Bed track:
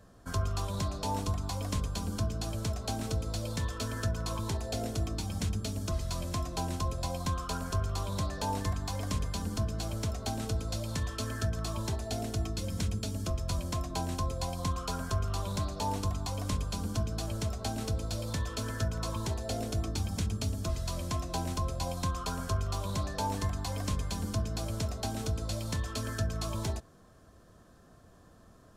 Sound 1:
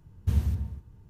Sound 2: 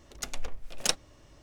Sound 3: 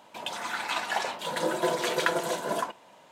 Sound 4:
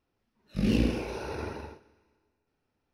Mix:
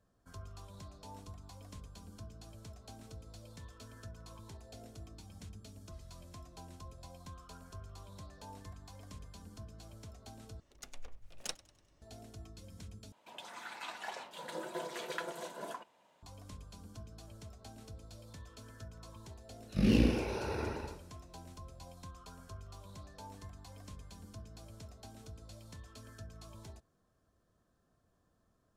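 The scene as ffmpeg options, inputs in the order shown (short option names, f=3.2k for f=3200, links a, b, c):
-filter_complex "[0:a]volume=-17.5dB[a];[2:a]asplit=5[b][c][d][e][f];[c]adelay=98,afreqshift=45,volume=-22dB[g];[d]adelay=196,afreqshift=90,volume=-27.8dB[h];[e]adelay=294,afreqshift=135,volume=-33.7dB[i];[f]adelay=392,afreqshift=180,volume=-39.5dB[j];[b][g][h][i][j]amix=inputs=5:normalize=0[k];[a]asplit=3[l][m][n];[l]atrim=end=10.604[o];[k]atrim=end=1.42,asetpts=PTS-STARTPTS,volume=-14dB[p];[m]atrim=start=12.016:end=13.124[q];[3:a]atrim=end=3.11,asetpts=PTS-STARTPTS,volume=-14dB[r];[n]atrim=start=16.226[s];[4:a]atrim=end=2.93,asetpts=PTS-STARTPTS,volume=-1.5dB,afade=t=in:d=0.004:c=hsin,afade=t=out:st=2.926:d=0.004:c=hsin,adelay=19200[t];[o][p]acrossfade=d=0.004:c1=hsin:c2=hsin[u];[u][q]acrossfade=d=0.004:c1=hsin:c2=hsin[v];[v][r]acrossfade=d=0.004:c1=hsin:c2=hsin[w];[w][s]acrossfade=d=0.004:c1=hsin:c2=hsin[x];[x][t]amix=inputs=2:normalize=0"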